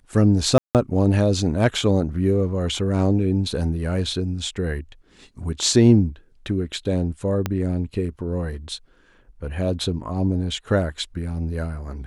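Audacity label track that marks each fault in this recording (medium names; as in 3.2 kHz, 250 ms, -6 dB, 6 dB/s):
0.580000	0.750000	dropout 168 ms
7.460000	7.460000	pop -9 dBFS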